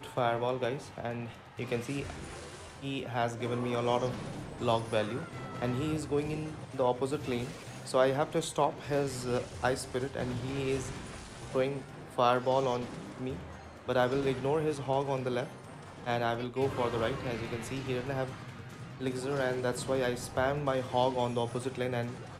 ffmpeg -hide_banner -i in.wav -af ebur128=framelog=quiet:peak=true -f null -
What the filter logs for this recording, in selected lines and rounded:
Integrated loudness:
  I:         -33.0 LUFS
  Threshold: -43.3 LUFS
Loudness range:
  LRA:         3.1 LU
  Threshold: -53.3 LUFS
  LRA low:   -35.0 LUFS
  LRA high:  -31.9 LUFS
True peak:
  Peak:      -13.7 dBFS